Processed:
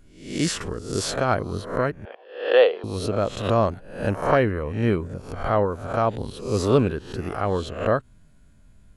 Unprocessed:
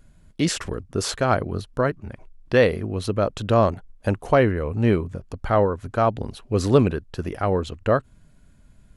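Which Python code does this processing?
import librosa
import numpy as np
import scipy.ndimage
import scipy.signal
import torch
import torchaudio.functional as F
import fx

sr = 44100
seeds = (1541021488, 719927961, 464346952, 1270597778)

y = fx.spec_swells(x, sr, rise_s=0.54)
y = fx.cabinet(y, sr, low_hz=420.0, low_slope=24, high_hz=3900.0, hz=(480.0, 750.0, 1300.0, 2100.0, 3100.0), db=(6, 8, 4, -7, 10), at=(2.05, 2.84))
y = F.gain(torch.from_numpy(y), -3.0).numpy()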